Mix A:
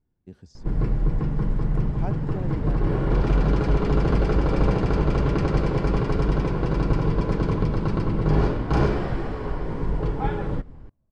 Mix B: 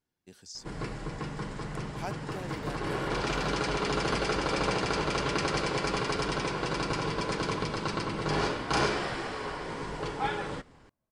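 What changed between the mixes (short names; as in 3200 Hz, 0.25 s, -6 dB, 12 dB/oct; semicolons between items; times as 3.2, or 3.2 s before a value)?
speech: add high shelf 5200 Hz +6.5 dB; master: add tilt +4.5 dB/oct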